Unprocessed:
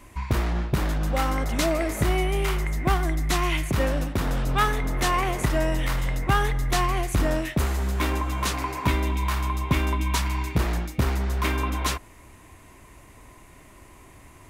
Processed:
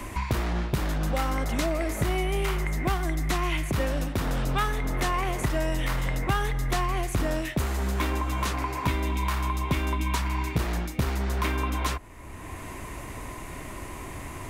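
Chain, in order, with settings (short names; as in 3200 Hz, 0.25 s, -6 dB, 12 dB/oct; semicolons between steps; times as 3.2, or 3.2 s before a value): three-band squash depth 70%; gain -3 dB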